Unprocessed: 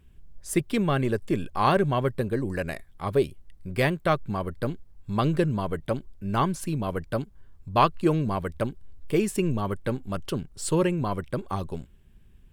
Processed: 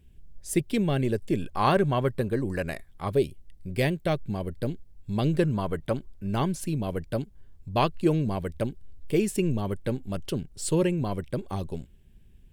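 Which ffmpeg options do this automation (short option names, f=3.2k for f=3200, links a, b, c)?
-af "asetnsamples=n=441:p=0,asendcmd='1.42 equalizer g -2;3.12 equalizer g -13;5.39 equalizer g -1.5;6.27 equalizer g -9',equalizer=f=1.2k:t=o:w=0.93:g=-11.5"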